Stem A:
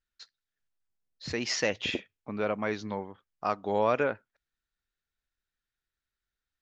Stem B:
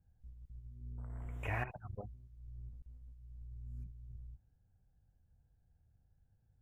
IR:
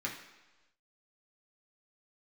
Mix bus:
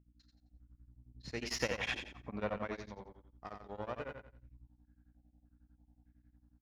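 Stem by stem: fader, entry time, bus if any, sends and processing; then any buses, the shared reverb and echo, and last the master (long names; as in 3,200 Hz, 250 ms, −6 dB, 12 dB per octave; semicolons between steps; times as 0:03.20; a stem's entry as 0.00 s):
0:01.01 −14.5 dB → 0:01.46 −4 dB → 0:02.50 −4 dB → 0:03.00 −13 dB, 0.00 s, no send, echo send −5.5 dB, one-sided soft clipper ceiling −27.5 dBFS; mains hum 60 Hz, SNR 14 dB
+2.5 dB, 0.30 s, send −16.5 dB, no echo send, low-shelf EQ 430 Hz −8.5 dB; low-pass on a step sequencer 3.3 Hz 690–2,300 Hz; automatic ducking −7 dB, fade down 1.90 s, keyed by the first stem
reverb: on, RT60 1.1 s, pre-delay 3 ms
echo: repeating echo 87 ms, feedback 31%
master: tremolo along a rectified sine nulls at 11 Hz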